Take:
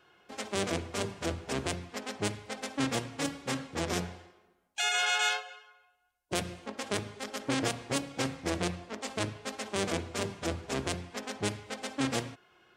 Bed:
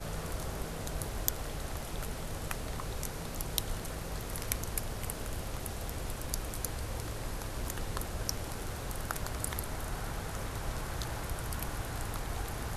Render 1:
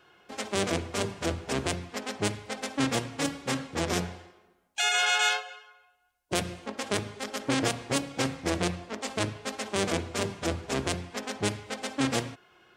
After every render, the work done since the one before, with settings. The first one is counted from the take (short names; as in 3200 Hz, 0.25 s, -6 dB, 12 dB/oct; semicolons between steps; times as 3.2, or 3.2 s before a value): gain +3.5 dB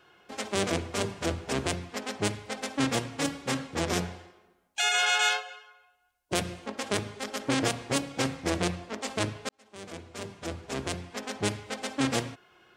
9.49–11.51 fade in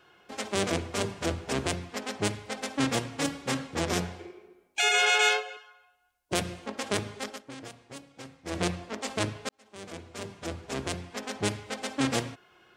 4.19–5.57 small resonant body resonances 380/2300 Hz, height 15 dB, ringing for 30 ms; 7.24–8.62 dip -16.5 dB, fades 0.18 s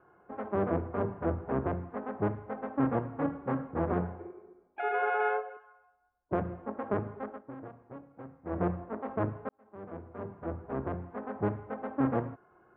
inverse Chebyshev low-pass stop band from 5700 Hz, stop band 70 dB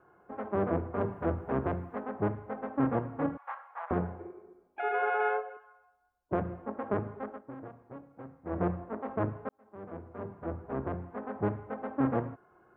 1.01–2.03 high shelf 3100 Hz +8 dB; 3.37–3.91 steep high-pass 800 Hz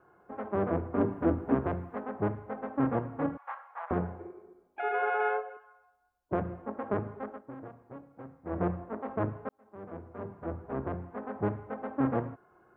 0.92–1.55 bell 280 Hz +14 dB 0.45 oct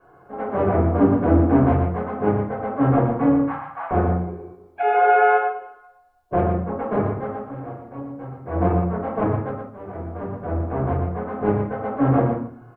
echo 0.118 s -6.5 dB; shoebox room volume 270 m³, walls furnished, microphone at 5.5 m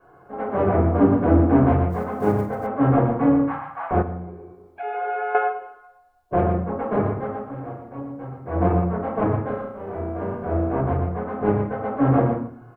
1.9–2.68 block floating point 7-bit; 4.02–5.35 compressor 1.5:1, threshold -43 dBFS; 9.43–10.81 flutter echo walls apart 5.7 m, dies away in 0.57 s